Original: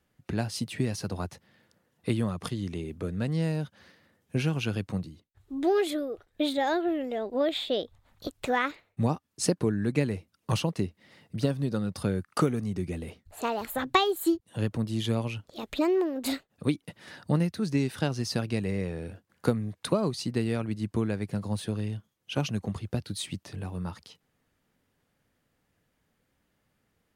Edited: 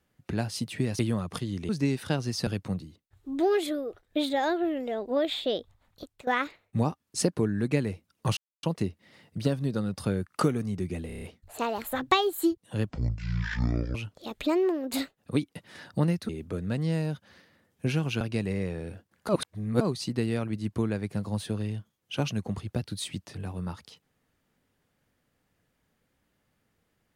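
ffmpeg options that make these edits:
-filter_complex "[0:a]asplit=17[a][b][c][d][e][f][g][h][i][j][k][l][m][n][o][p][q];[a]atrim=end=0.992[r];[b]atrim=start=2.088:end=2.792[s];[c]atrim=start=17.608:end=18.392[t];[d]atrim=start=4.708:end=8.51,asetpts=PTS-STARTPTS,afade=t=out:st=3.132:d=0.67:silence=0.105925[u];[e]atrim=start=8.51:end=10.61,asetpts=PTS-STARTPTS,afade=t=in:d=0.004:c=hsin:silence=0.105925,afade=t=out:st=2.096:d=0.004:c=hsin,apad=pad_dur=0.26[v];[f]atrim=start=10.61:end=13.082,asetpts=PTS-STARTPTS,afade=t=in:d=0.004:c=hsin[w];[g]atrim=start=13.048:end=13.082[x];[h]atrim=start=13.048:end=13.082[y];[i]atrim=start=13.048:end=13.082[z];[j]atrim=start=13.048:end=13.082[aa];[k]atrim=start=13.048:end=14.724[ab];[l]atrim=start=14.72:end=15.27,asetpts=PTS-STARTPTS,asetrate=22932,aresample=44100,atrim=end_sample=46644,asetpts=PTS-STARTPTS[ac];[m]atrim=start=15.266:end=17.612[ad];[n]atrim=start=2.788:end=4.712[ae];[o]atrim=start=18.388:end=19.472[af];[p]atrim=start=19.468:end=19.992,asetpts=PTS-STARTPTS,areverse[ag];[q]atrim=start=19.988[ah];[r][s]acrossfade=d=0.004:c1=hsin:c2=hsin[ai];[ai][t]acrossfade=d=0.004:c1=hsin:c2=hsin[aj];[u][v][w]concat=n=3:v=0:a=1[ak];[aj][ak]acrossfade=d=0.004:c1=hsin:c2=hsin[al];[al][x]acrossfade=d=0.004:c1=hsin:c2=hsin[am];[am][y]acrossfade=d=0.004:c1=hsin:c2=hsin[an];[an][z]acrossfade=d=0.004:c1=hsin:c2=hsin[ao];[ao][aa]acrossfade=d=0.004:c1=hsin:c2=hsin[ap];[ap][ab]acrossfade=d=0.004:c1=hsin:c2=hsin[aq];[aq][ac]acrossfade=d=0.004:c1=hsin:c2=hsin[ar];[ar][ad]acrossfade=d=0.004:c1=hsin:c2=hsin[as];[as][ae]acrossfade=d=0.004:c1=hsin:c2=hsin[at];[at][af]acrossfade=d=0.004:c1=hsin:c2=hsin[au];[au][ag]acrossfade=d=0.004:c1=hsin:c2=hsin[av];[av][ah]acrossfade=d=0.004:c1=hsin:c2=hsin"

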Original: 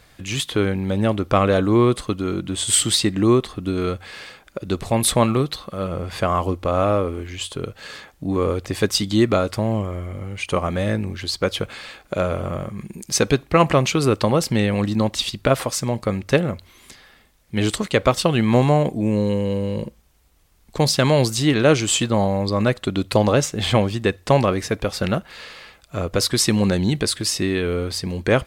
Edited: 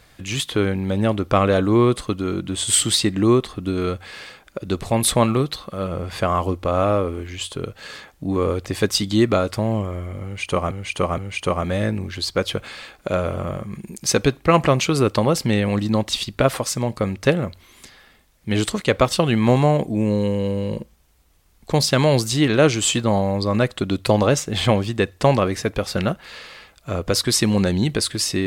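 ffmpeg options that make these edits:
-filter_complex "[0:a]asplit=3[a][b][c];[a]atrim=end=10.712[d];[b]atrim=start=10.238:end=10.712[e];[c]atrim=start=10.238[f];[d][e]acrossfade=d=0.004:c1=hsin:c2=hsin[g];[g][f]acrossfade=d=0.004:c1=hsin:c2=hsin"

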